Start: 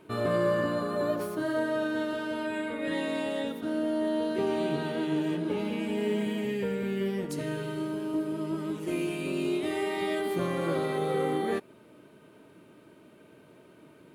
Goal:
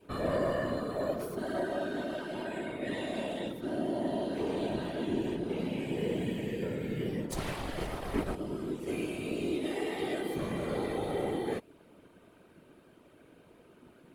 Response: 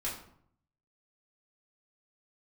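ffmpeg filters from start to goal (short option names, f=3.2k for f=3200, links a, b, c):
-filter_complex "[0:a]asplit=3[a][b][c];[a]afade=t=out:st=7.31:d=0.02[d];[b]aeval=exprs='0.0944*(cos(1*acos(clip(val(0)/0.0944,-1,1)))-cos(1*PI/2))+0.0266*(cos(6*acos(clip(val(0)/0.0944,-1,1)))-cos(6*PI/2))+0.0299*(cos(7*acos(clip(val(0)/0.0944,-1,1)))-cos(7*PI/2))':c=same,afade=t=in:st=7.31:d=0.02,afade=t=out:st=8.34:d=0.02[e];[c]afade=t=in:st=8.34:d=0.02[f];[d][e][f]amix=inputs=3:normalize=0,adynamicequalizer=threshold=0.00447:dfrequency=1200:dqfactor=1.3:tfrequency=1200:tqfactor=1.3:attack=5:release=100:ratio=0.375:range=2.5:mode=cutabove:tftype=bell,afftfilt=real='hypot(re,im)*cos(2*PI*random(0))':imag='hypot(re,im)*sin(2*PI*random(1))':win_size=512:overlap=0.75,volume=2.5dB"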